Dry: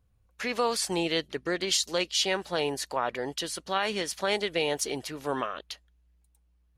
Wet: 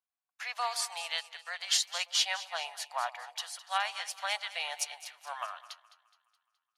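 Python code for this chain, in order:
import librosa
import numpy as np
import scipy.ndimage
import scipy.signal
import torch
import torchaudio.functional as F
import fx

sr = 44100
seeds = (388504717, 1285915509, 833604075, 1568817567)

y = scipy.signal.sosfilt(scipy.signal.ellip(4, 1.0, 50, 700.0, 'highpass', fs=sr, output='sos'), x)
y = fx.echo_split(y, sr, split_hz=950.0, low_ms=121, high_ms=210, feedback_pct=52, wet_db=-11.0)
y = fx.upward_expand(y, sr, threshold_db=-52.0, expansion=1.5)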